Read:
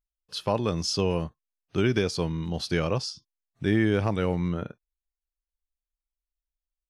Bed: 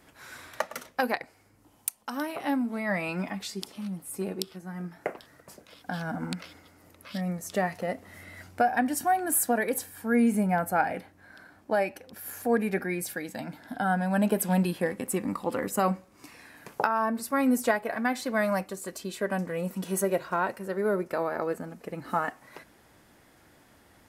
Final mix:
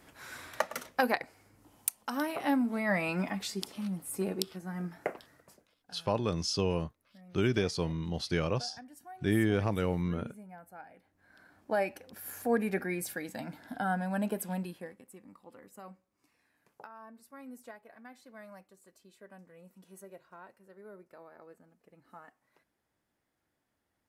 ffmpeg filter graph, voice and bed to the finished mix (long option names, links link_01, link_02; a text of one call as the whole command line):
ffmpeg -i stem1.wav -i stem2.wav -filter_complex "[0:a]adelay=5600,volume=-4.5dB[link_01];[1:a]volume=20dB,afade=type=out:start_time=4.91:duration=0.84:silence=0.0668344,afade=type=in:start_time=11:duration=0.82:silence=0.0944061,afade=type=out:start_time=13.64:duration=1.42:silence=0.1[link_02];[link_01][link_02]amix=inputs=2:normalize=0" out.wav